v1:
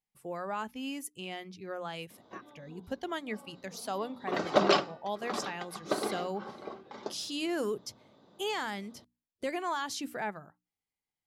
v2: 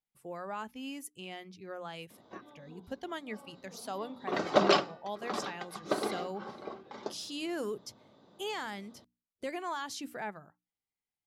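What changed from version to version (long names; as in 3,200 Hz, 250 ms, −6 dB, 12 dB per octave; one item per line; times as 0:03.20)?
speech −3.5 dB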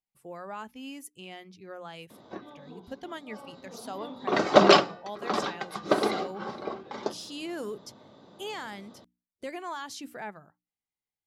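background +7.5 dB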